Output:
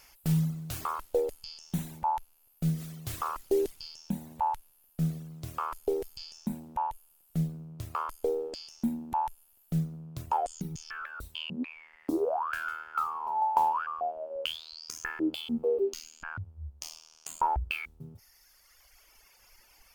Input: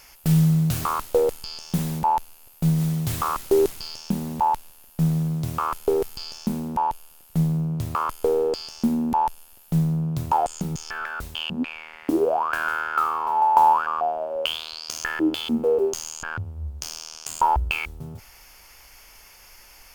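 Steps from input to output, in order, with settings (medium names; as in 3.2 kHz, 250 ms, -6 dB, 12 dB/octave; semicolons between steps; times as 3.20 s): reverb removal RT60 1.9 s; 15.64–16.24 s: graphic EQ 125/250/1000/2000/4000/8000 Hz -11/+11/-8/+4/+6/-8 dB; trim -7.5 dB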